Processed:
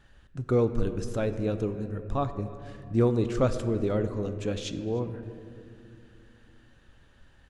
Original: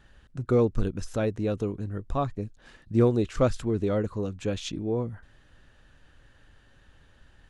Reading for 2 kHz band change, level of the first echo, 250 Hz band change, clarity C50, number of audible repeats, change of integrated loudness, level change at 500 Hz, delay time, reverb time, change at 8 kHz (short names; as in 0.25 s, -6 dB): -1.0 dB, -22.5 dB, -1.0 dB, 10.5 dB, 1, -1.0 dB, -1.0 dB, 0.303 s, 2.4 s, -1.5 dB